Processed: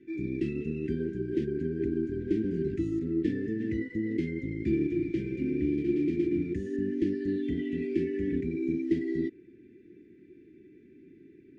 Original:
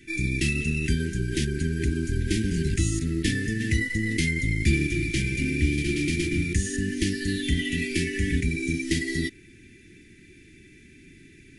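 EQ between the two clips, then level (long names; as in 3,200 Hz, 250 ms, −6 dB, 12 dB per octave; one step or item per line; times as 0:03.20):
resonant band-pass 380 Hz, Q 1.8
high-frequency loss of the air 62 metres
+3.0 dB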